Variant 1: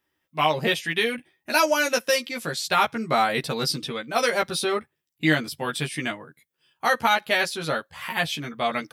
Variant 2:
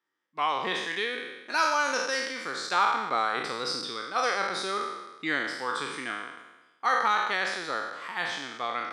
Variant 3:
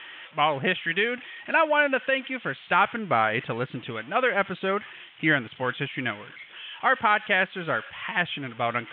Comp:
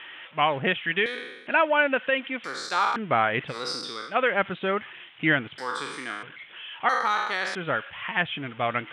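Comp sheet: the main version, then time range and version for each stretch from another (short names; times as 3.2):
3
1.06–1.47 from 2
2.44–2.96 from 2
3.52–4.11 from 2, crossfade 0.10 s
5.58–6.23 from 2
6.89–7.55 from 2
not used: 1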